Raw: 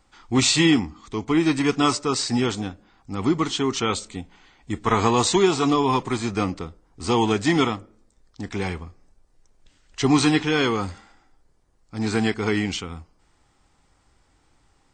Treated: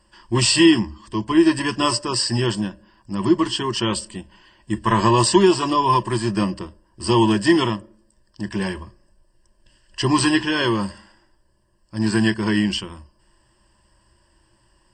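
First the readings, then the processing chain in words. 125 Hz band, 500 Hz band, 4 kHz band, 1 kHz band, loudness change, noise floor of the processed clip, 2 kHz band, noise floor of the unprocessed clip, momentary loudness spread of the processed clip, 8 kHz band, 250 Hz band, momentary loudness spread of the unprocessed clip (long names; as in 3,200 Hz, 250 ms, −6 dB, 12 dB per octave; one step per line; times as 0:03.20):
+3.0 dB, +2.0 dB, +3.0 dB, +3.0 dB, +2.5 dB, −62 dBFS, +2.0 dB, −63 dBFS, 16 LU, +2.0 dB, +3.0 dB, 16 LU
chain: EQ curve with evenly spaced ripples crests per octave 1.3, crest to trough 16 dB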